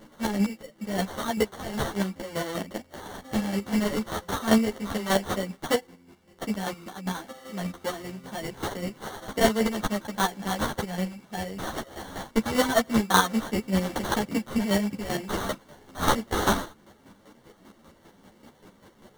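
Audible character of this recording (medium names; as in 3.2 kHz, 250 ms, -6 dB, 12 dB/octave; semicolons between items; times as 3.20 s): aliases and images of a low sample rate 2.5 kHz, jitter 0%; chopped level 5.1 Hz, depth 60%, duty 30%; a shimmering, thickened sound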